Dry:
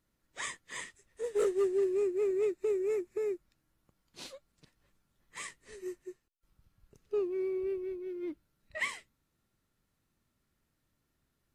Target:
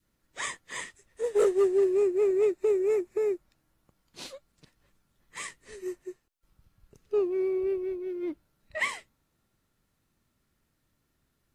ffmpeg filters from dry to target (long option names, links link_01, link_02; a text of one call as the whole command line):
ffmpeg -i in.wav -af "adynamicequalizer=threshold=0.00398:dfrequency=730:dqfactor=1.2:tfrequency=730:tqfactor=1.2:attack=5:release=100:ratio=0.375:range=3:mode=boostabove:tftype=bell,volume=4dB" out.wav